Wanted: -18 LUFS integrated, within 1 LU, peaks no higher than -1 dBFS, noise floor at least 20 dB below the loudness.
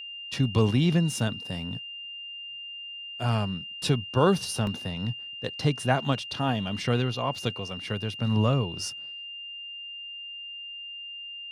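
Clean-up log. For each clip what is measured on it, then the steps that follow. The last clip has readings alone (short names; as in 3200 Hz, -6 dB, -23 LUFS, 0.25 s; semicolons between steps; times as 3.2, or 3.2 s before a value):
dropouts 3; longest dropout 1.3 ms; steady tone 2800 Hz; tone level -37 dBFS; loudness -29.0 LUFS; peak -8.0 dBFS; loudness target -18.0 LUFS
-> interpolate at 0.34/4.67/7.38, 1.3 ms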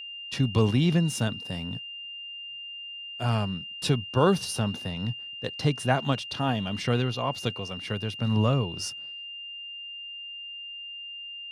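dropouts 0; steady tone 2800 Hz; tone level -37 dBFS
-> notch 2800 Hz, Q 30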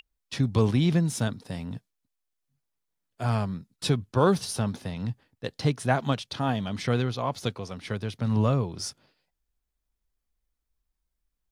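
steady tone none; loudness -28.0 LUFS; peak -8.5 dBFS; loudness target -18.0 LUFS
-> gain +10 dB; limiter -1 dBFS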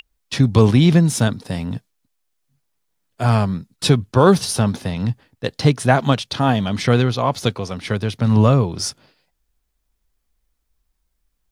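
loudness -18.0 LUFS; peak -1.0 dBFS; noise floor -72 dBFS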